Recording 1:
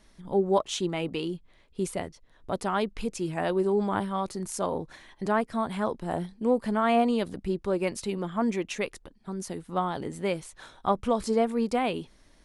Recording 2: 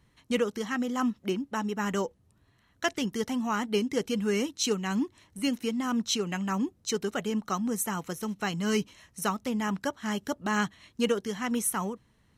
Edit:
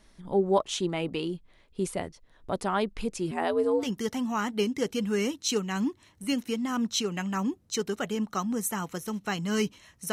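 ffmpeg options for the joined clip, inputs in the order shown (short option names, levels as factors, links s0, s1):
-filter_complex "[0:a]asettb=1/sr,asplit=3[s0][s1][s2];[s0]atrim=end=3.314[s3];[s1]atrim=start=3.31:end=3.89,asetpts=PTS-STARTPTS,afade=t=in:d=0.004:c=qsin,afade=t=out:st=0.576:d=0.004:c=qsin,afreqshift=75[s4];[s2]atrim=start=3.886[s5];[s3][s4]acrossfade=d=0.004:c1=hsin:c2=qsin[s6];[s6][s5]acrossfade=d=0.004:c1=qsin:c2=hsin,apad=whole_dur=10.12,atrim=end=10.12,atrim=end=3.89,asetpts=PTS-STARTPTS[s7];[1:a]atrim=start=2.9:end=9.27,asetpts=PTS-STARTPTS[s8];[s7][s8]acrossfade=d=0.14:c1=tri:c2=tri"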